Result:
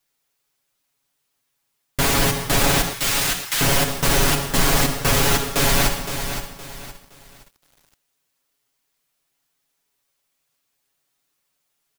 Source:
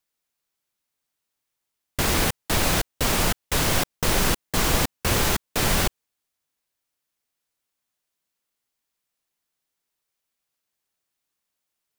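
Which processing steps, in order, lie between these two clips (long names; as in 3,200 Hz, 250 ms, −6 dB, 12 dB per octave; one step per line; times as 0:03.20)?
on a send at −8 dB: convolution reverb RT60 1.1 s, pre-delay 13 ms
on the sum: soft clipping −14 dBFS, distortion −18 dB
comb filter 7.2 ms, depth 93%
in parallel at +2.5 dB: brickwall limiter −17 dBFS, peak gain reduction 7.5 dB
0:02.93–0:03.61: on the sum: high-pass filter 1,500 Hz 12 dB per octave
feedback echo at a low word length 516 ms, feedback 35%, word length 7 bits, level −9 dB
level −2.5 dB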